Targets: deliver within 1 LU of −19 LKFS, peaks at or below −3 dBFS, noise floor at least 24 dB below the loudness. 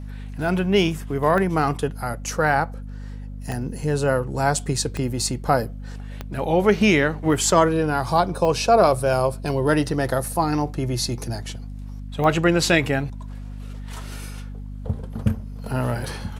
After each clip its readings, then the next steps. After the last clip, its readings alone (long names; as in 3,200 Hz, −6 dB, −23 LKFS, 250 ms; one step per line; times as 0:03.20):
number of clicks 6; mains hum 50 Hz; hum harmonics up to 250 Hz; level of the hum −31 dBFS; integrated loudness −22.0 LKFS; sample peak −2.5 dBFS; target loudness −19.0 LKFS
→ click removal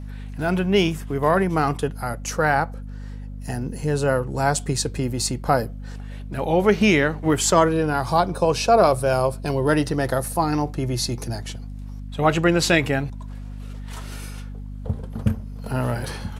number of clicks 0; mains hum 50 Hz; hum harmonics up to 250 Hz; level of the hum −31 dBFS
→ mains-hum notches 50/100/150/200/250 Hz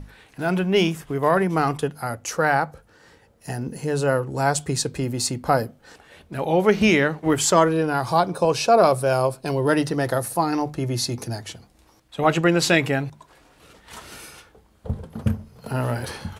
mains hum none found; integrated loudness −22.0 LKFS; sample peak −2.5 dBFS; target loudness −19.0 LKFS
→ level +3 dB
brickwall limiter −3 dBFS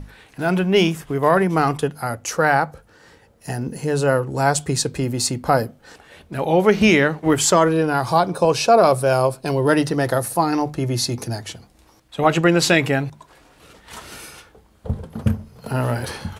integrated loudness −19.0 LKFS; sample peak −3.0 dBFS; background noise floor −54 dBFS